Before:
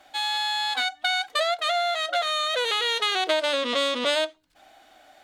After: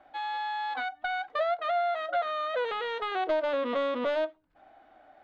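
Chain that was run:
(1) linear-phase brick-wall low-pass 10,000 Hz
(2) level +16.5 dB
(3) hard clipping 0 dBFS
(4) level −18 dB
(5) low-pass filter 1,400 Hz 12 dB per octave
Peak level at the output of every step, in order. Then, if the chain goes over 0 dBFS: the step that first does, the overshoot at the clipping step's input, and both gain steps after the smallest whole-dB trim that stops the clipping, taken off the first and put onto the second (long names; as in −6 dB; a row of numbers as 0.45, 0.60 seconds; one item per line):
−9.0, +7.5, 0.0, −18.0, −18.5 dBFS
step 2, 7.5 dB
step 2 +8.5 dB, step 4 −10 dB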